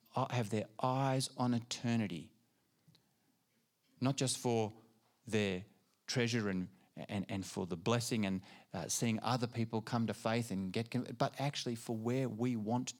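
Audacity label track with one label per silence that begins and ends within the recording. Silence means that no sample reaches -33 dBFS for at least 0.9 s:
2.130000	4.020000	silence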